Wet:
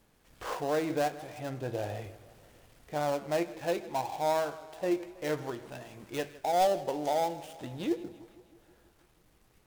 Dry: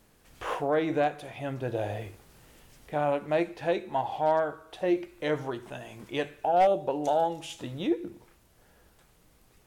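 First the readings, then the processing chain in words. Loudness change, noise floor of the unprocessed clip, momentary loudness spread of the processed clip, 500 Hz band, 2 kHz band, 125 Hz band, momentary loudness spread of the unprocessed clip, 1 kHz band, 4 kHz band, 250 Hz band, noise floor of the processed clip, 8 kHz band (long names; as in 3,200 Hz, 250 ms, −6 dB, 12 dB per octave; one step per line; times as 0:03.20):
−3.5 dB, −62 dBFS, 13 LU, −3.5 dB, −3.5 dB, −3.5 dB, 13 LU, −3.5 dB, −1.0 dB, −3.5 dB, −66 dBFS, can't be measured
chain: gap after every zero crossing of 0.12 ms
feedback echo with a swinging delay time 161 ms, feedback 63%, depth 104 cents, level −18.5 dB
level −3.5 dB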